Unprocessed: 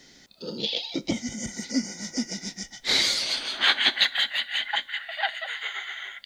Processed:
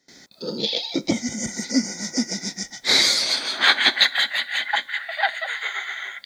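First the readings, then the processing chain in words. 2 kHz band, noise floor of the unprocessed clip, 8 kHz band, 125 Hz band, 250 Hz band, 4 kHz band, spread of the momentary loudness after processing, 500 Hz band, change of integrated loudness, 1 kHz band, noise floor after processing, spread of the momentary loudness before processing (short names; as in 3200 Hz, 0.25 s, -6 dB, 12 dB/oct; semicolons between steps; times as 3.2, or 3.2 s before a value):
+5.5 dB, -54 dBFS, +6.5 dB, +4.0 dB, +5.5 dB, +4.0 dB, 12 LU, +6.0 dB, +4.5 dB, +6.5 dB, -50 dBFS, 13 LU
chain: HPF 140 Hz 6 dB/oct; bell 2900 Hz -13 dB 0.24 oct; gate with hold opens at -43 dBFS; gain +6.5 dB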